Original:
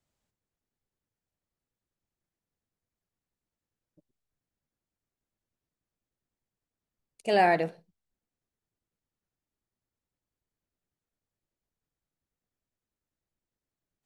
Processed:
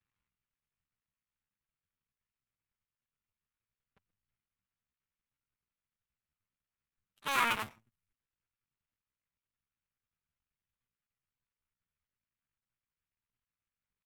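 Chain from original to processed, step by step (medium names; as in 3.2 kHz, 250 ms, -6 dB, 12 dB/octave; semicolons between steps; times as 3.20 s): cycle switcher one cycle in 2, muted; level-controlled noise filter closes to 3 kHz, open at -45 dBFS; in parallel at 0 dB: peak limiter -23 dBFS, peak gain reduction 11 dB; on the sum: graphic EQ 250/500/1000/2000/4000/8000 Hz -8/-10/+5/+5/-6/+4 dB; pitch shift +5 st; trim -7 dB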